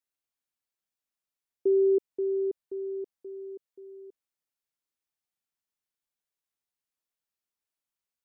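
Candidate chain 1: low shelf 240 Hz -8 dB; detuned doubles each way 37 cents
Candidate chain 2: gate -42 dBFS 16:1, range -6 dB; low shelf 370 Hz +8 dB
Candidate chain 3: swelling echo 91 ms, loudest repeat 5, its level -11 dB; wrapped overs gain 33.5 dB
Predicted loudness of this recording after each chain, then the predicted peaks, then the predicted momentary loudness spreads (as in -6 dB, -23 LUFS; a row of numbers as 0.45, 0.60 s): -33.5, -24.5, -38.0 LUFS; -19.5, -14.5, -33.5 dBFS; 21, 19, 17 LU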